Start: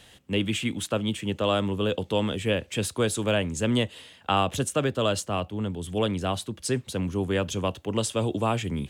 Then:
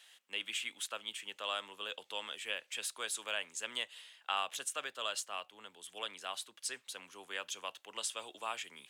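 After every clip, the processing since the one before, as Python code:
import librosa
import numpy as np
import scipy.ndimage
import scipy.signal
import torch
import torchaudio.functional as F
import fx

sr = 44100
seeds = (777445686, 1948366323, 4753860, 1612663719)

y = scipy.signal.sosfilt(scipy.signal.butter(2, 1200.0, 'highpass', fs=sr, output='sos'), x)
y = y * 10.0 ** (-6.5 / 20.0)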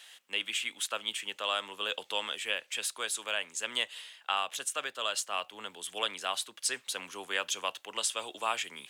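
y = fx.rider(x, sr, range_db=4, speed_s=0.5)
y = y * 10.0 ** (6.5 / 20.0)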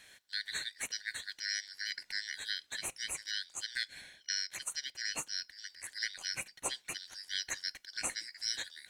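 y = fx.band_shuffle(x, sr, order='4321')
y = y * 10.0 ** (-5.0 / 20.0)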